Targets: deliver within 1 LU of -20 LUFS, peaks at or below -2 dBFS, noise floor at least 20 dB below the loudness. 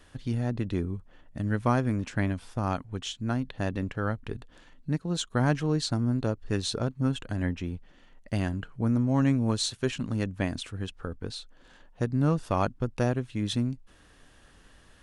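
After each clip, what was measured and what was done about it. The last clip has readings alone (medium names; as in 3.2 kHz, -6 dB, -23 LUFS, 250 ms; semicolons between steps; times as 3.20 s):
loudness -29.5 LUFS; peak level -10.5 dBFS; loudness target -20.0 LUFS
-> trim +9.5 dB; peak limiter -2 dBFS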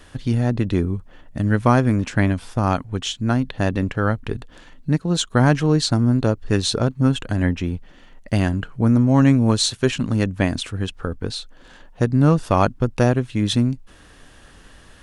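loudness -20.0 LUFS; peak level -2.0 dBFS; noise floor -48 dBFS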